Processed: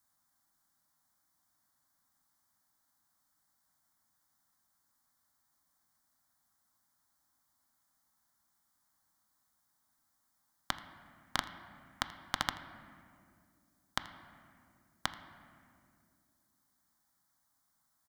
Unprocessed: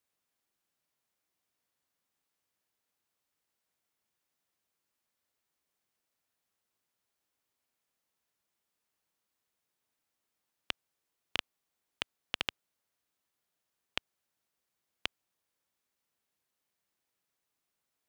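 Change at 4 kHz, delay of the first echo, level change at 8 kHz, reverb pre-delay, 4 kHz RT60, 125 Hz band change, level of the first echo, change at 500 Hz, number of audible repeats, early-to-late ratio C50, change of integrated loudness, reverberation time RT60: −2.0 dB, 82 ms, +7.5 dB, 4 ms, 1.5 s, +7.5 dB, −20.0 dB, 0.0 dB, 1, 11.0 dB, +0.5 dB, 2.4 s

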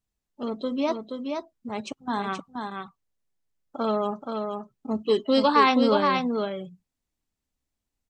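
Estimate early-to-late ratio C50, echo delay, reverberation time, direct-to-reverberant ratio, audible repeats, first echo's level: no reverb audible, 476 ms, no reverb audible, no reverb audible, 1, −5.0 dB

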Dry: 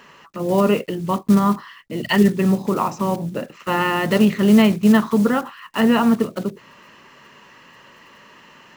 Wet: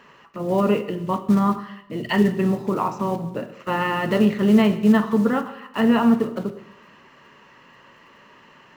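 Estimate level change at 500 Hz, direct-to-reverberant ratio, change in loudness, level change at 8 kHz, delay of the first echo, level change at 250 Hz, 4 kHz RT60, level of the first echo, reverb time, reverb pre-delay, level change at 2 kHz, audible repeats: −2.0 dB, 8.5 dB, −2.5 dB, can't be measured, no echo audible, −2.5 dB, 0.75 s, no echo audible, 0.85 s, 6 ms, −3.5 dB, no echo audible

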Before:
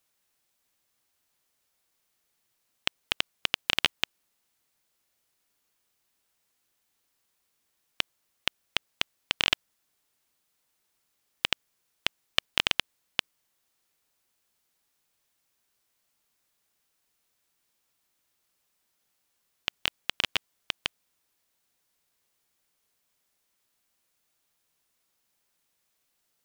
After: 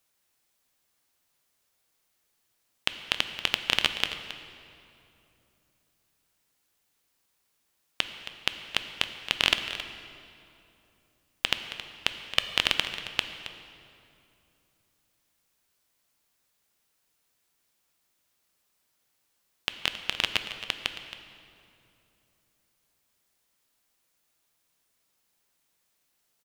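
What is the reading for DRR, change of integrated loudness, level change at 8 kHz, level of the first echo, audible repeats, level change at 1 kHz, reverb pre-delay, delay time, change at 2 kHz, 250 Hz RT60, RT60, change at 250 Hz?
7.0 dB, +1.5 dB, +1.5 dB, −13.5 dB, 1, +1.5 dB, 7 ms, 271 ms, +2.0 dB, 3.5 s, 2.9 s, +2.0 dB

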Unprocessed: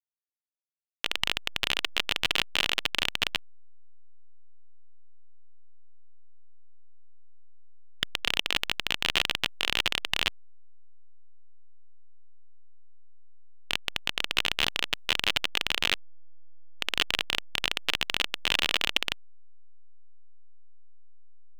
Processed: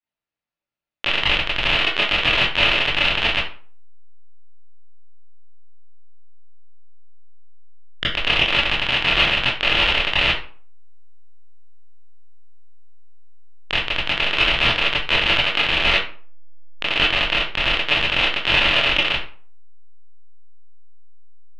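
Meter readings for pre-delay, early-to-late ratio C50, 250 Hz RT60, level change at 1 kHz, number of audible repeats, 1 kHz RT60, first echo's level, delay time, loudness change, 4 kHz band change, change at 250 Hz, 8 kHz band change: 20 ms, 5.0 dB, 0.45 s, +11.5 dB, no echo audible, 0.45 s, no echo audible, no echo audible, +9.5 dB, +8.5 dB, +11.5 dB, can't be measured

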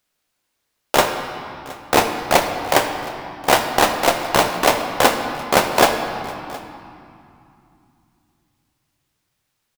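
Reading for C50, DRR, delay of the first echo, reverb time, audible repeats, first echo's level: 6.0 dB, 5.0 dB, 717 ms, 2.7 s, 1, −21.0 dB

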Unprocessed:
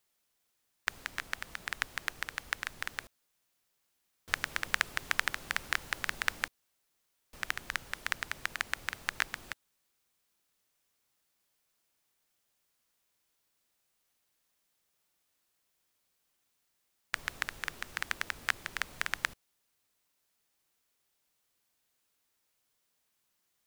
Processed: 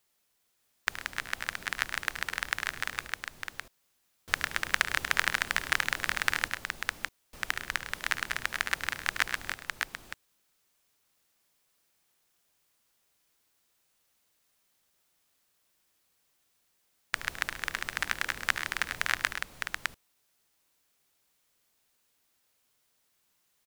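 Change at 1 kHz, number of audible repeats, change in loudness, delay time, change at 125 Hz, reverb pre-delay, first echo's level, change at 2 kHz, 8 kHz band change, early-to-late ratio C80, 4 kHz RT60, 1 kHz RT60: +5.0 dB, 3, +4.0 dB, 73 ms, +5.0 dB, no reverb audible, −14.0 dB, +5.0 dB, +5.0 dB, no reverb audible, no reverb audible, no reverb audible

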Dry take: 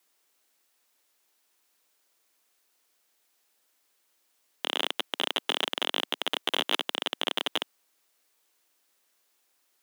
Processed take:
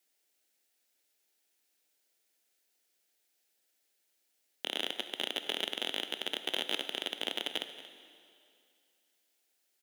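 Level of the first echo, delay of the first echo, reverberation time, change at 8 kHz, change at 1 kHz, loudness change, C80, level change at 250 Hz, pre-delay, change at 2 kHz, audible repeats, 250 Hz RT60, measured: −15.5 dB, 230 ms, 2.4 s, −5.0 dB, −10.5 dB, −5.5 dB, 10.0 dB, −5.5 dB, 13 ms, −6.0 dB, 1, 2.4 s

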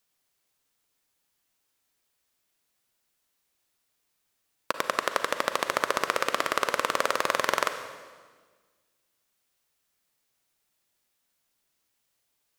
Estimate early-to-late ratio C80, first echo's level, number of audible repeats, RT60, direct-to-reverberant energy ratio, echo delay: 10.0 dB, no echo audible, no echo audible, 1.5 s, 8.0 dB, no echo audible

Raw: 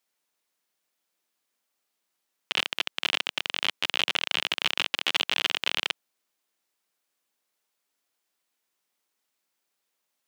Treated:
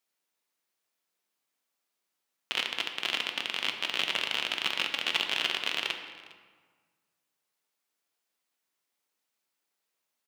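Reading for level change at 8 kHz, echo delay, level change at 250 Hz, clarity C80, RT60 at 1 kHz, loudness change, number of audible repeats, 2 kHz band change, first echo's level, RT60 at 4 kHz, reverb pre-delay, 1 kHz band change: −3.5 dB, 406 ms, −2.5 dB, 8.0 dB, 1.6 s, −3.0 dB, 1, −2.5 dB, −22.0 dB, 1.1 s, 4 ms, −2.5 dB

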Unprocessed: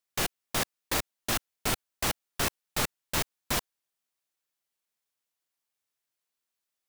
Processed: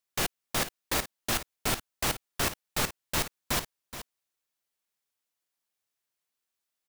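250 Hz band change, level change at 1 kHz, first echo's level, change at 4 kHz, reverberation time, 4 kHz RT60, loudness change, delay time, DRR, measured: 0.0 dB, +0.5 dB, −12.5 dB, 0.0 dB, no reverb audible, no reverb audible, 0.0 dB, 424 ms, no reverb audible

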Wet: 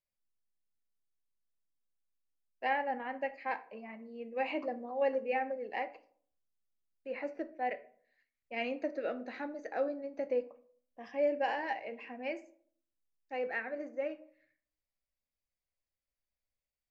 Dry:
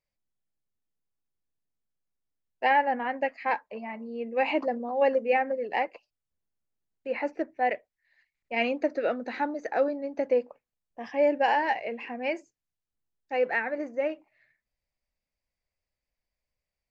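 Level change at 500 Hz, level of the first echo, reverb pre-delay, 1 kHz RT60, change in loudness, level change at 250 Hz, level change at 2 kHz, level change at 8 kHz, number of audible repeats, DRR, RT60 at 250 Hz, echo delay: −8.0 dB, no echo audible, 4 ms, 0.50 s, −8.5 dB, −8.5 dB, −9.0 dB, can't be measured, no echo audible, 10.0 dB, 0.70 s, no echo audible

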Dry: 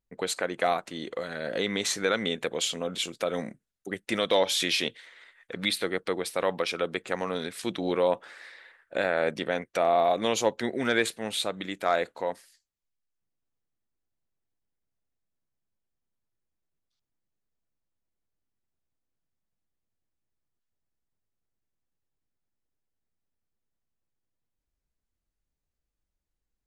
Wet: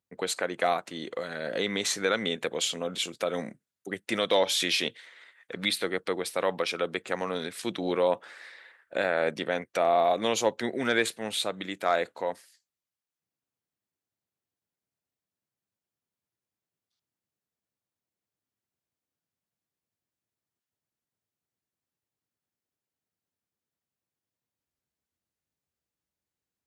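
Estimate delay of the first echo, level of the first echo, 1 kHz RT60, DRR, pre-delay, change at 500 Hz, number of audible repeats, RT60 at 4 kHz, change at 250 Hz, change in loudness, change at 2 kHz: no echo audible, no echo audible, no reverb audible, no reverb audible, no reverb audible, −0.5 dB, no echo audible, no reverb audible, −1.0 dB, −0.5 dB, 0.0 dB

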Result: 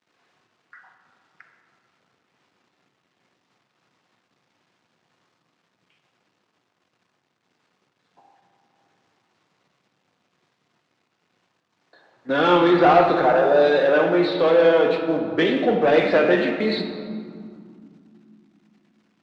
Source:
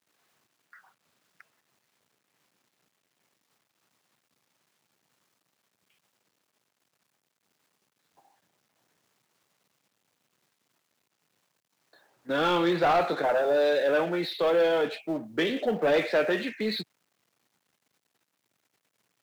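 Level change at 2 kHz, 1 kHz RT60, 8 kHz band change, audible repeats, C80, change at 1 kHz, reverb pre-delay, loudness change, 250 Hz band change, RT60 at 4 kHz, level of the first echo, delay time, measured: +7.0 dB, 2.5 s, can't be measured, no echo audible, 7.0 dB, +8.5 dB, 3 ms, +7.5 dB, +9.0 dB, 1.2 s, no echo audible, no echo audible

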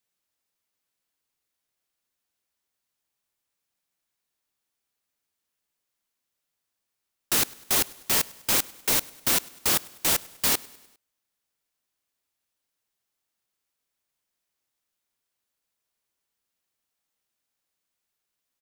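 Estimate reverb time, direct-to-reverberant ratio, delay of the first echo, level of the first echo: no reverb audible, no reverb audible, 101 ms, −23.0 dB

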